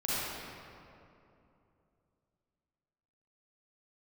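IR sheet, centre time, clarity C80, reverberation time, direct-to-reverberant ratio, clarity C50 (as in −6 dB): 192 ms, −4.0 dB, 2.8 s, −10.0 dB, −8.0 dB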